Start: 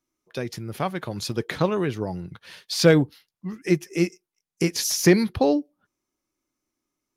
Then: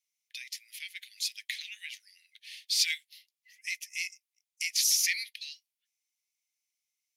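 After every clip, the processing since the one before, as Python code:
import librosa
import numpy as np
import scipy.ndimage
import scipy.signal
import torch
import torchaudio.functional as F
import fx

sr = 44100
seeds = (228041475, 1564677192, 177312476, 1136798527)

y = scipy.signal.sosfilt(scipy.signal.butter(12, 2000.0, 'highpass', fs=sr, output='sos'), x)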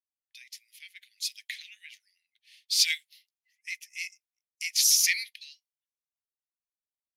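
y = fx.band_widen(x, sr, depth_pct=70)
y = y * 10.0 ** (-2.0 / 20.0)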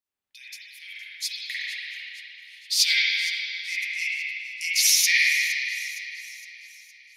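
y = fx.echo_wet_highpass(x, sr, ms=463, feedback_pct=50, hz=1500.0, wet_db=-15.5)
y = fx.rev_spring(y, sr, rt60_s=2.5, pass_ms=(43, 53), chirp_ms=50, drr_db=-9.0)
y = y * 10.0 ** (2.0 / 20.0)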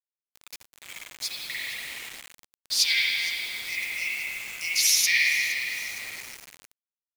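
y = fx.quant_dither(x, sr, seeds[0], bits=6, dither='none')
y = y * 10.0 ** (-2.0 / 20.0)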